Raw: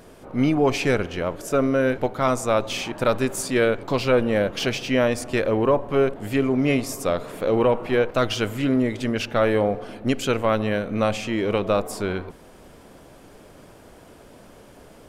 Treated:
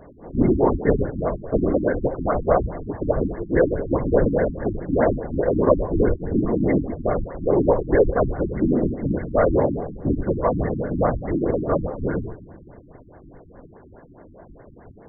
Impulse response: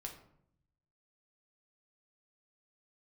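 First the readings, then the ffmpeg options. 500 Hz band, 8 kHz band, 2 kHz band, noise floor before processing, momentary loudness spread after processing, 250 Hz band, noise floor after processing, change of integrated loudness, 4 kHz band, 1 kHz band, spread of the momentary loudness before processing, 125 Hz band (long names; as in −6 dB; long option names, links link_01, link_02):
+1.0 dB, below −40 dB, −6.5 dB, −48 dBFS, 7 LU, +1.0 dB, −47 dBFS, +0.5 dB, below −40 dB, −0.5 dB, 6 LU, +3.0 dB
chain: -filter_complex "[0:a]asplit=2[link_01][link_02];[1:a]atrim=start_sample=2205,asetrate=28224,aresample=44100[link_03];[link_02][link_03]afir=irnorm=-1:irlink=0,volume=-1.5dB[link_04];[link_01][link_04]amix=inputs=2:normalize=0,afftfilt=real='hypot(re,im)*cos(2*PI*random(0))':imag='hypot(re,im)*sin(2*PI*random(1))':win_size=512:overlap=0.75,equalizer=frequency=220:width=3.5:gain=-2,bandreject=frequency=1300:width=9.6,afftfilt=real='re*lt(b*sr/1024,330*pow(2200/330,0.5+0.5*sin(2*PI*4.8*pts/sr)))':imag='im*lt(b*sr/1024,330*pow(2200/330,0.5+0.5*sin(2*PI*4.8*pts/sr)))':win_size=1024:overlap=0.75,volume=4dB"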